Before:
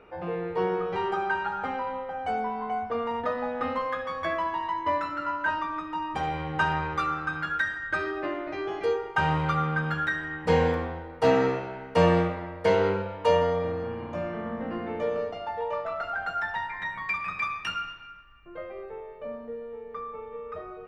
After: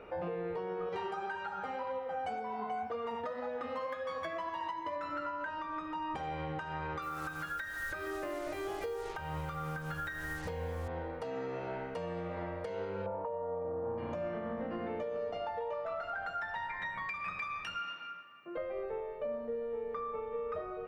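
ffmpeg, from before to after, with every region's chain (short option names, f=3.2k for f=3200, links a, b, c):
-filter_complex "[0:a]asettb=1/sr,asplit=3[a][b][c];[a]atrim=end=0.894[d];[b]atrim=start=0.89:end=4.96,asetpts=PTS-STARTPTS,afade=t=in:d=0.004:c=qsin,afade=t=out:st=4.066:d=0.004:c=qsin,highpass=48,highshelf=f=4.9k:g=10,flanger=delay=1.7:depth=4.8:regen=60:speed=1.9:shape=sinusoidal[e];[c]atrim=start=4.956[f];[d][e]acrossfade=d=0.004:c1=hsin:c2=qsin[g];[g][f]acrossfade=d=0.004:c1=qsin:c2=hsin,asettb=1/sr,asplit=3[h][i][j];[h]atrim=end=7.024[k];[i]atrim=start=7.02:end=10.88,asetpts=PTS-STARTPTS,afade=t=in:d=0.004:c=qsin,afade=t=out:st=3.856:d=0.004:c=qsin,asubboost=boost=6.5:cutoff=86,acrusher=bits=6:mix=0:aa=0.5[l];[j]atrim=start=10.876[m];[k][l]acrossfade=d=0.004:c1=hsin:c2=qsin[n];[n][m]acrossfade=d=0.004:c1=qsin:c2=hsin,asettb=1/sr,asplit=3[o][p][q];[o]atrim=end=13.064[r];[p]atrim=start=13.06:end=13.98,asetpts=PTS-STARTPTS,afade=t=in:d=0.004:c=qsin,afade=t=out:st=0.916:d=0.004:c=qsin,lowpass=f=930:t=q:w=1.7,asplit=2[s][t];[t]adelay=15,volume=-13dB[u];[s][u]amix=inputs=2:normalize=0,atrim=end_sample=40572[v];[q]atrim=start=13.976[w];[r][v]acrossfade=d=0.004:c1=hsin:c2=qsin[x];[x][w]acrossfade=d=0.004:c1=qsin:c2=hsin,asettb=1/sr,asplit=3[y][z][aa];[y]atrim=end=17.794[ab];[z]atrim=start=17.79:end=18.57,asetpts=PTS-STARTPTS,afade=t=in:d=0.004:c=qsin,afade=t=out:st=0.776:d=0.004:c=qsin,highpass=f=180:w=0.5412,highpass=f=180:w=1.3066,bandreject=f=1.6k:w=26,asplit=2[ac][ad];[ad]adelay=12,volume=-14dB[ae];[ac][ae]amix=inputs=2:normalize=0,atrim=end_sample=34398[af];[aa]atrim=start=18.566[ag];[ab][af]acrossfade=d=0.004:c1=hsin:c2=qsin[ah];[ah][ag]acrossfade=d=0.004:c1=qsin:c2=hsin,acompressor=threshold=-30dB:ratio=12,equalizer=f=560:t=o:w=0.45:g=5.5,alimiter=level_in=6.5dB:limit=-24dB:level=0:latency=1:release=413,volume=-6.5dB,volume=1dB"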